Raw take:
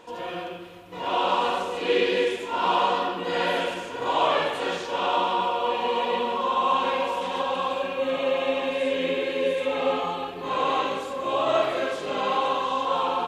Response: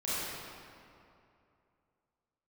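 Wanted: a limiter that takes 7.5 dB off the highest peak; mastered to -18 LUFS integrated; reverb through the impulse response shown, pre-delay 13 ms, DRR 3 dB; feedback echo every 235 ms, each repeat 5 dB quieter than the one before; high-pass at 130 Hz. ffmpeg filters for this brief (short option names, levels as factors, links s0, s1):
-filter_complex "[0:a]highpass=130,alimiter=limit=0.133:level=0:latency=1,aecho=1:1:235|470|705|940|1175|1410|1645:0.562|0.315|0.176|0.0988|0.0553|0.031|0.0173,asplit=2[s0][s1];[1:a]atrim=start_sample=2205,adelay=13[s2];[s1][s2]afir=irnorm=-1:irlink=0,volume=0.316[s3];[s0][s3]amix=inputs=2:normalize=0,volume=1.78"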